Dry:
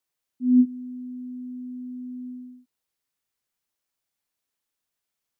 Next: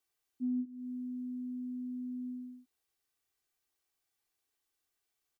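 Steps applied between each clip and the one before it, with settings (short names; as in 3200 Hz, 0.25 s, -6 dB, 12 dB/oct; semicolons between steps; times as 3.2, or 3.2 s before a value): comb 2.6 ms, depth 56%; compressor 12:1, threshold -30 dBFS, peak gain reduction 15.5 dB; gain -2 dB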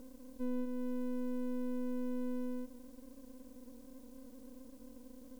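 per-bin compression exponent 0.2; tone controls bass -14 dB, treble +7 dB; half-wave rectifier; gain +7.5 dB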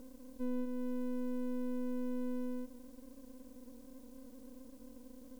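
nothing audible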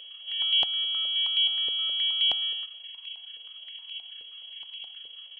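reverse echo 0.127 s -6 dB; inverted band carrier 3300 Hz; stepped high-pass 9.5 Hz 470–2500 Hz; gain +3.5 dB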